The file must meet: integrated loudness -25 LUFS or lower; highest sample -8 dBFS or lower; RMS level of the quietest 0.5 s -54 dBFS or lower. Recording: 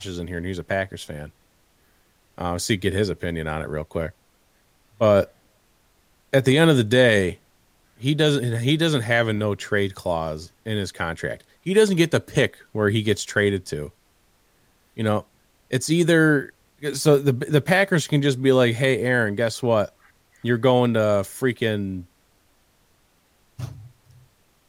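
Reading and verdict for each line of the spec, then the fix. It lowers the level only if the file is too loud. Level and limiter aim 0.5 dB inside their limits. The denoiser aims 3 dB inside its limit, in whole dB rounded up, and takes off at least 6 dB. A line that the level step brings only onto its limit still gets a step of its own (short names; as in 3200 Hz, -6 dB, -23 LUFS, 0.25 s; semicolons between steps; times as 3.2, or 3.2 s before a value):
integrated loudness -21.5 LUFS: fail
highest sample -4.0 dBFS: fail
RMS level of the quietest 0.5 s -62 dBFS: OK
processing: gain -4 dB; limiter -8.5 dBFS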